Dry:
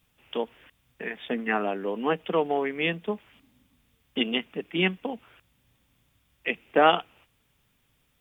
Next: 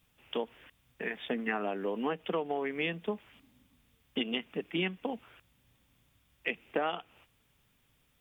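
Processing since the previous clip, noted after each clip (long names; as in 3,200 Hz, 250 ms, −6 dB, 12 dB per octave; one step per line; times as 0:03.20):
downward compressor 6 to 1, threshold −27 dBFS, peak gain reduction 13.5 dB
level −1.5 dB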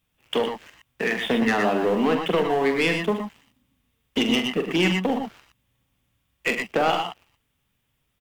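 leveller curve on the samples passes 3
on a send: multi-tap delay 44/104/119/120 ms −8/−10.5/−8.5/−10 dB
on the sum: level +1.5 dB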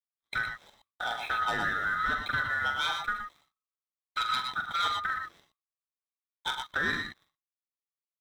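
neighbouring bands swapped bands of 1,000 Hz
downward expander −49 dBFS
level −8.5 dB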